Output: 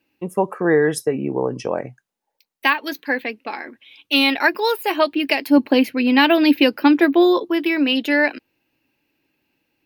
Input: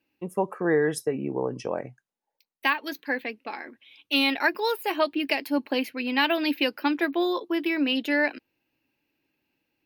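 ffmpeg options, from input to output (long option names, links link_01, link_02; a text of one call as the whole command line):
ffmpeg -i in.wav -filter_complex "[0:a]asettb=1/sr,asplit=3[link_01][link_02][link_03];[link_01]atrim=end=5.484[link_04];[link_02]atrim=start=5.48:end=7.5,asetpts=PTS-STARTPTS,afade=type=in:duration=0.004:curve=qsin,afade=type=out:start_time=2.016:duration=0.004:curve=qsin,lowshelf=frequency=410:gain=9[link_05];[link_03]atrim=start=7.496[link_06];[link_04][link_05]acrossfade=duration=0.004:curve1=hsin:curve2=qsin[link_07];[link_07][link_06]acrossfade=duration=0.004:curve1=qsin:curve2=hsin,volume=6.5dB" out.wav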